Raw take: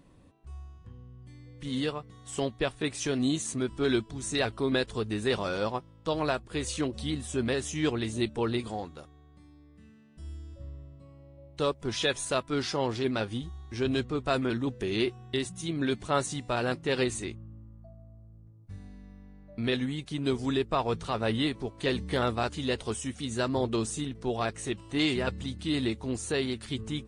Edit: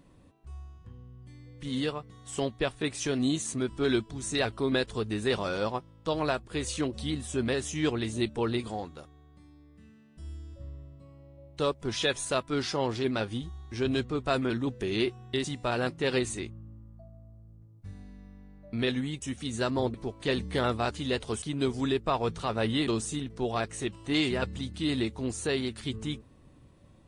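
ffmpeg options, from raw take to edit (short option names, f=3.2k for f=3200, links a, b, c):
-filter_complex "[0:a]asplit=6[a][b][c][d][e][f];[a]atrim=end=15.442[g];[b]atrim=start=16.288:end=20.072[h];[c]atrim=start=22.998:end=23.722[i];[d]atrim=start=21.518:end=23.002[j];[e]atrim=start=20.068:end=21.522[k];[f]atrim=start=23.718[l];[g][h]acrossfade=d=0.004:c1=hsin:c2=hsin[m];[m][i]acrossfade=d=0.004:c1=hsin:c2=hsin[n];[n][j]acrossfade=d=0.004:c1=hsin:c2=hsin[o];[o][k]acrossfade=d=0.004:c1=hsin:c2=hsin[p];[p][l]acrossfade=d=0.004:c1=hsin:c2=hsin"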